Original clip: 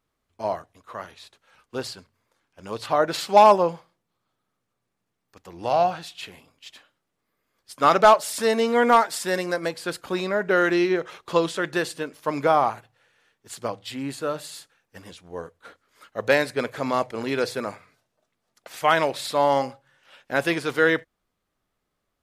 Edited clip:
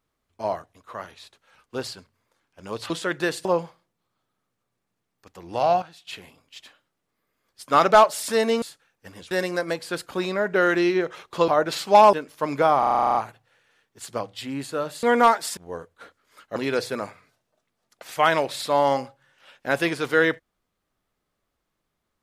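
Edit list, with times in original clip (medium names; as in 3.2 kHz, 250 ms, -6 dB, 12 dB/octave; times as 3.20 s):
2.90–3.55 s: swap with 11.43–11.98 s
5.92–6.17 s: gain -10.5 dB
8.72–9.26 s: swap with 14.52–15.21 s
12.64 s: stutter 0.04 s, 10 plays
16.20–17.21 s: delete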